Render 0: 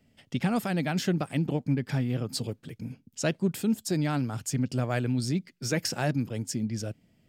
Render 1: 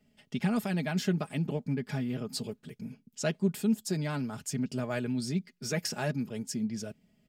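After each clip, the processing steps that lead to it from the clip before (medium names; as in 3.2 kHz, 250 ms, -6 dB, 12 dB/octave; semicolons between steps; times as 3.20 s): comb 4.8 ms, depth 58%; trim -4.5 dB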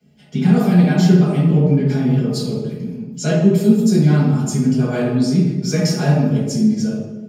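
reverberation RT60 1.2 s, pre-delay 3 ms, DRR -9.5 dB; trim -2.5 dB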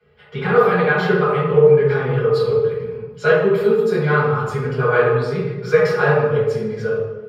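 FFT filter 110 Hz 0 dB, 160 Hz -15 dB, 300 Hz -25 dB, 450 Hz +9 dB, 650 Hz -7 dB, 1.2 kHz +11 dB, 2.7 kHz -3 dB, 4.1 kHz -7 dB, 6.3 kHz -25 dB, 12 kHz -16 dB; trim +5 dB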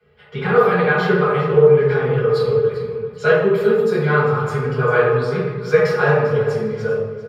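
feedback delay 397 ms, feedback 29%, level -14 dB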